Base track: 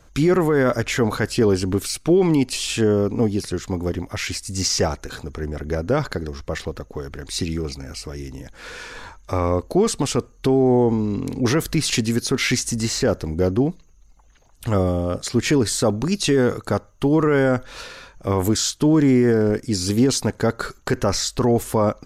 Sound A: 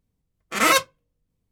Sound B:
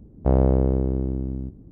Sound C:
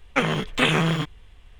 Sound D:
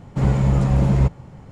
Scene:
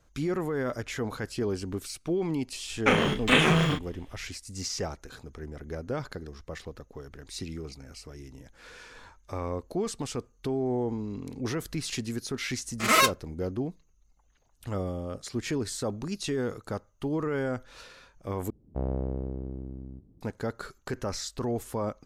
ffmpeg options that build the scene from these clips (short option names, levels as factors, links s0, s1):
-filter_complex "[0:a]volume=0.237[s0];[3:a]asplit=2[s1][s2];[s2]adelay=35,volume=0.631[s3];[s1][s3]amix=inputs=2:normalize=0[s4];[1:a]aecho=1:1:4.8:0.44[s5];[s0]asplit=2[s6][s7];[s6]atrim=end=18.504[s8];[2:a]atrim=end=1.71,asetpts=PTS-STARTPTS,volume=0.237[s9];[s7]atrim=start=20.206[s10];[s4]atrim=end=1.59,asetpts=PTS-STARTPTS,volume=0.794,afade=t=in:d=0.004:c=hsin,afade=t=out:st=1.586:d=0.004:c=hsin,adelay=2700[s11];[s5]atrim=end=1.51,asetpts=PTS-STARTPTS,volume=0.631,afade=t=in:d=0.004:c=hsin,afade=t=out:st=1.506:d=0.004:c=hsin,adelay=12280[s12];[s8][s9]acrossfade=d=0.004:c1=hsin:c2=hsin[s13];[s13][s10]acrossfade=d=0.004:c1=hsin:c2=hsin[s14];[s14][s11][s12]amix=inputs=3:normalize=0"